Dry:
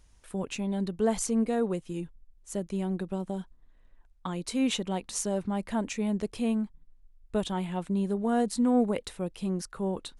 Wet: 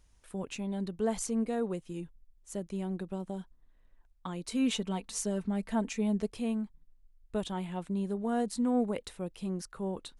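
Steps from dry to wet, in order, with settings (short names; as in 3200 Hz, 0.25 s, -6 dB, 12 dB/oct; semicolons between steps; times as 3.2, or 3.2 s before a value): 4.51–6.3 comb 4.5 ms, depth 61%; gain -4.5 dB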